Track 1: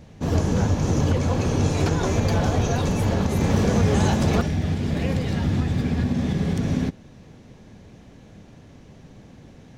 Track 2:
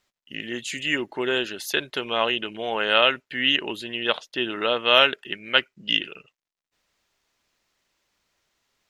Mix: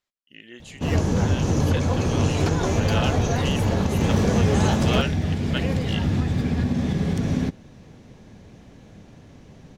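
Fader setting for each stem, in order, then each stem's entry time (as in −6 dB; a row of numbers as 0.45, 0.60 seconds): 0.0, −12.0 decibels; 0.60, 0.00 seconds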